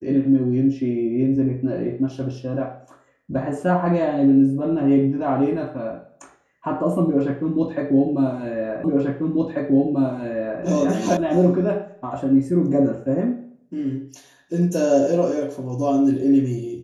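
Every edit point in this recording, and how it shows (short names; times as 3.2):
8.84 repeat of the last 1.79 s
11.17 sound cut off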